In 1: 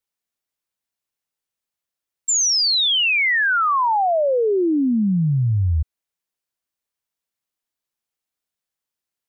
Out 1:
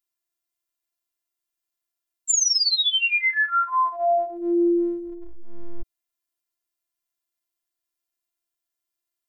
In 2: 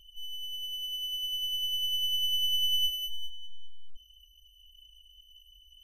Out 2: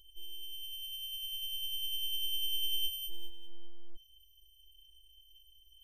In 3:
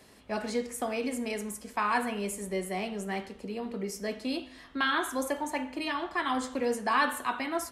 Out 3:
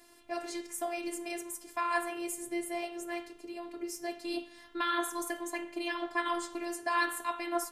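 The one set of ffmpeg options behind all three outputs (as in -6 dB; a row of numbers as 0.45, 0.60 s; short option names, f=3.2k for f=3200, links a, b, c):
-af "crystalizer=i=1:c=0,highshelf=f=4k:g=-3,afftfilt=real='hypot(re,im)*cos(PI*b)':imag='0':win_size=512:overlap=0.75"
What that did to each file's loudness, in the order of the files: -3.0, -6.5, -3.5 LU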